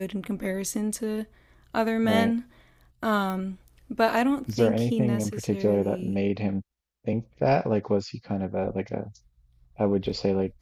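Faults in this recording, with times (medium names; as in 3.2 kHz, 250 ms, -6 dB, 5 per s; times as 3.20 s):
3.30 s: pop -20 dBFS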